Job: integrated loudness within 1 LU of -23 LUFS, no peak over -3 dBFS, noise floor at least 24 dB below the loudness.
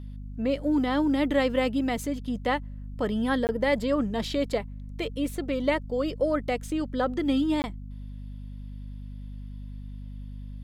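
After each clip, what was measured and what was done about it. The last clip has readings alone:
dropouts 2; longest dropout 19 ms; hum 50 Hz; highest harmonic 250 Hz; hum level -36 dBFS; loudness -27.5 LUFS; peak level -12.0 dBFS; loudness target -23.0 LUFS
-> interpolate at 3.47/7.62 s, 19 ms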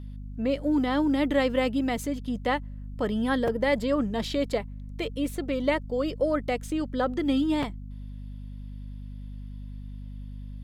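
dropouts 0; hum 50 Hz; highest harmonic 250 Hz; hum level -36 dBFS
-> de-hum 50 Hz, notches 5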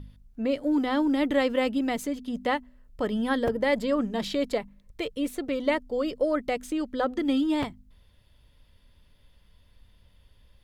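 hum not found; loudness -27.5 LUFS; peak level -12.5 dBFS; loudness target -23.0 LUFS
-> trim +4.5 dB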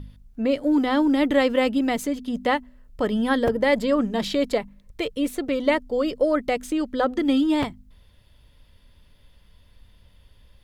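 loudness -23.0 LUFS; peak level -8.0 dBFS; noise floor -55 dBFS

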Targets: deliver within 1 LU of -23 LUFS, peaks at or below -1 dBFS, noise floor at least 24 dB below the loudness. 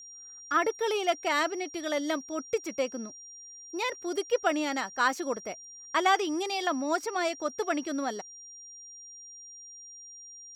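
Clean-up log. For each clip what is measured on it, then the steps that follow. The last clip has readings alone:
steady tone 5.7 kHz; tone level -45 dBFS; loudness -30.0 LUFS; peak level -12.0 dBFS; loudness target -23.0 LUFS
-> band-stop 5.7 kHz, Q 30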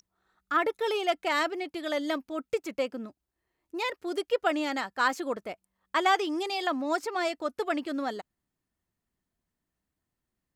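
steady tone not found; loudness -30.0 LUFS; peak level -12.0 dBFS; loudness target -23.0 LUFS
-> trim +7 dB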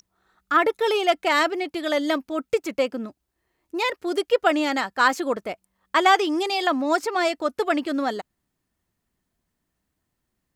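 loudness -23.0 LUFS; peak level -5.0 dBFS; noise floor -79 dBFS

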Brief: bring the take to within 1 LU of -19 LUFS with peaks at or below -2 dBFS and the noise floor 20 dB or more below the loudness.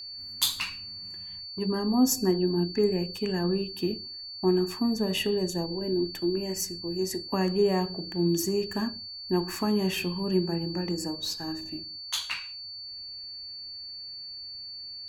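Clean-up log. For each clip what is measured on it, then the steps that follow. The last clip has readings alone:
steady tone 4.5 kHz; tone level -38 dBFS; loudness -29.0 LUFS; peak level -10.0 dBFS; loudness target -19.0 LUFS
-> band-stop 4.5 kHz, Q 30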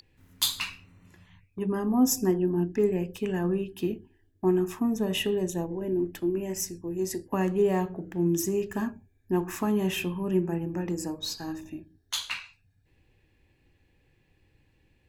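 steady tone not found; loudness -29.0 LUFS; peak level -10.0 dBFS; loudness target -19.0 LUFS
-> trim +10 dB; peak limiter -2 dBFS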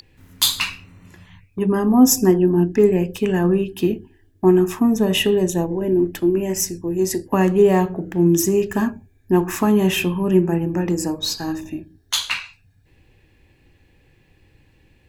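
loudness -19.0 LUFS; peak level -2.0 dBFS; noise floor -57 dBFS

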